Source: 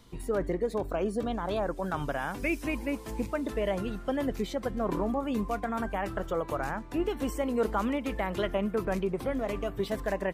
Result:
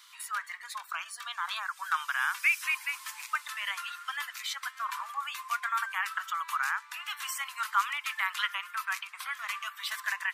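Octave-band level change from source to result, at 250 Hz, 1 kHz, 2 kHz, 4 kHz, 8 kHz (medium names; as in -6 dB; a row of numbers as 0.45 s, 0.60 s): under -40 dB, +2.0 dB, +8.5 dB, +8.5 dB, +8.5 dB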